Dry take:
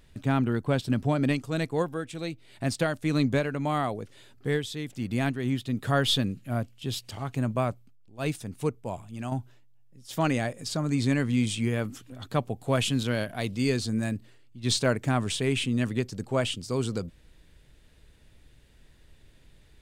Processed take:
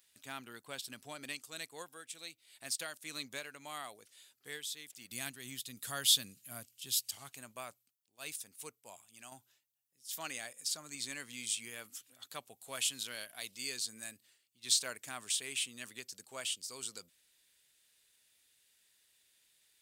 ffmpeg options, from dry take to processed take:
-filter_complex "[0:a]asettb=1/sr,asplit=3[a][b][c];[a]atrim=end=5.114[d];[b]atrim=start=5.11:end=7.29,asetpts=PTS-STARTPTS,afade=t=in:d=0.004:c=qsin,afade=t=out:st=2.176:d=0.004:c=qsin,bass=f=250:g=9,treble=f=4k:g=6[e];[c]atrim=start=7.286[f];[d][e]acrossfade=d=0.004:c1=hsin:c2=qsin[g];[g][f]acrossfade=d=0.004:c1=qsin:c2=hsin,aderivative,volume=1dB"

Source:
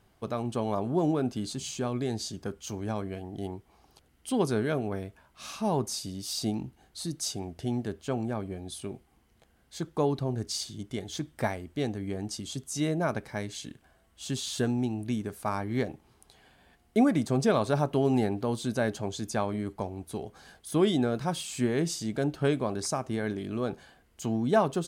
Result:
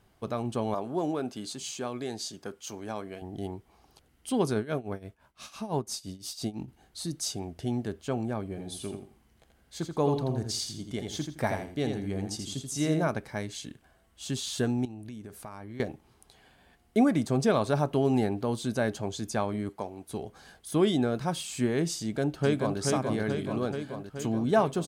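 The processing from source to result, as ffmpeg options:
-filter_complex "[0:a]asettb=1/sr,asplit=3[a][b][c];[a]atrim=end=0.744[d];[b]atrim=start=0.74:end=3.22,asetpts=PTS-STARTPTS,afade=t=in:d=0.004:c=qsin,afade=t=out:st=2.476:d=0.004:c=qsin,highpass=f=390:p=1[e];[c]atrim=start=3.216[f];[d][e]acrossfade=d=0.004:c1=hsin:c2=qsin[g];[g][f]acrossfade=d=0.004:c1=qsin:c2=hsin,asplit=3[h][i][j];[h]afade=t=out:st=4.53:d=0.02[k];[i]tremolo=f=5.9:d=0.85,afade=t=in:st=4.53:d=0.02,afade=t=out:st=6.67:d=0.02[l];[j]afade=t=in:st=6.67:d=0.02[m];[k][l][m]amix=inputs=3:normalize=0,asplit=3[n][o][p];[n]afade=t=out:st=8.56:d=0.02[q];[o]aecho=1:1:83|166|249:0.501|0.12|0.0289,afade=t=in:st=8.56:d=0.02,afade=t=out:st=13.07:d=0.02[r];[p]afade=t=in:st=13.07:d=0.02[s];[q][r][s]amix=inputs=3:normalize=0,asettb=1/sr,asplit=3[t][u][v];[t]atrim=end=14.854[w];[u]atrim=start=14.85:end=15.8,asetpts=PTS-STARTPTS,afade=t=in:d=0.004:c=qsin,afade=t=out:st=0.946:d=0.004:c=qsin,acompressor=threshold=-39dB:ratio=6:attack=3.2:release=140:knee=1:detection=peak[x];[v]atrim=start=15.796[y];[w][x]acrossfade=d=0.004:c1=hsin:c2=qsin[z];[z][y]acrossfade=d=0.004:c1=qsin:c2=hsin,asettb=1/sr,asplit=3[aa][ab][ac];[aa]atrim=end=19.694[ad];[ab]atrim=start=19.69:end=20.09,asetpts=PTS-STARTPTS,afade=t=in:d=0.004:c=qsin,afade=t=out:st=0.396:d=0.004:c=qsin,highpass=f=300:p=1[ae];[ac]atrim=start=20.086[af];[ad][ae]acrossfade=d=0.004:c1=hsin:c2=qsin[ag];[ag][af]acrossfade=d=0.004:c1=qsin:c2=hsin,asplit=2[ah][ai];[ai]afade=t=in:st=22:d=0.01,afade=t=out:st=22.8:d=0.01,aecho=0:1:430|860|1290|1720|2150|2580|3010|3440|3870|4300|4730|5160:0.668344|0.467841|0.327489|0.229242|0.160469|0.112329|0.07863|0.055041|0.0385287|0.0269701|0.0188791|0.0132153[aj];[ah][aj]amix=inputs=2:normalize=0"

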